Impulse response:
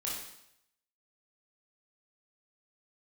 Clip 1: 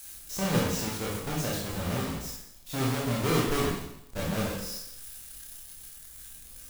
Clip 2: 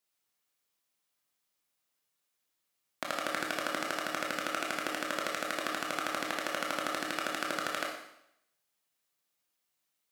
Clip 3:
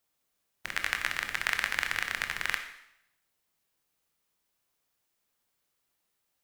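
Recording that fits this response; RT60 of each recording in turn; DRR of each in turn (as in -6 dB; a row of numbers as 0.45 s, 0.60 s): 1; 0.75 s, 0.75 s, 0.75 s; -5.5 dB, -0.5 dB, 6.0 dB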